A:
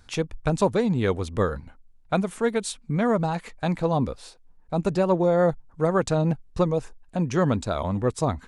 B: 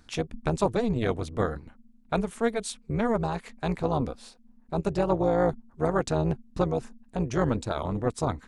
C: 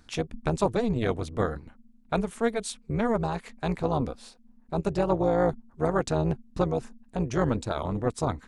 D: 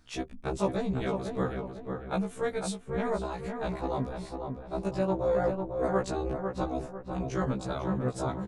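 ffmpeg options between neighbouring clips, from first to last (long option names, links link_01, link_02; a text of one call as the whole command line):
ffmpeg -i in.wav -af "tremolo=f=230:d=0.788" out.wav
ffmpeg -i in.wav -af anull out.wav
ffmpeg -i in.wav -filter_complex "[0:a]asplit=2[link_01][link_02];[link_02]adelay=499,lowpass=frequency=2000:poles=1,volume=-5dB,asplit=2[link_03][link_04];[link_04]adelay=499,lowpass=frequency=2000:poles=1,volume=0.41,asplit=2[link_05][link_06];[link_06]adelay=499,lowpass=frequency=2000:poles=1,volume=0.41,asplit=2[link_07][link_08];[link_08]adelay=499,lowpass=frequency=2000:poles=1,volume=0.41,asplit=2[link_09][link_10];[link_10]adelay=499,lowpass=frequency=2000:poles=1,volume=0.41[link_11];[link_01][link_03][link_05][link_07][link_09][link_11]amix=inputs=6:normalize=0,afftfilt=real='re*1.73*eq(mod(b,3),0)':imag='im*1.73*eq(mod(b,3),0)':win_size=2048:overlap=0.75,volume=-2dB" out.wav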